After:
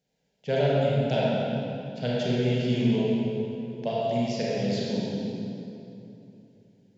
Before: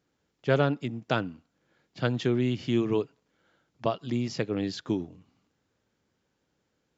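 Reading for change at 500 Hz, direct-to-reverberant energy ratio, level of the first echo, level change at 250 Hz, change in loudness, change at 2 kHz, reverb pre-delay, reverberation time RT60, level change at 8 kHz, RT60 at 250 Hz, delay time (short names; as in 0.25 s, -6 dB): +4.0 dB, -7.0 dB, none, +3.0 dB, +2.0 dB, -1.0 dB, 27 ms, 2.9 s, n/a, 3.5 s, none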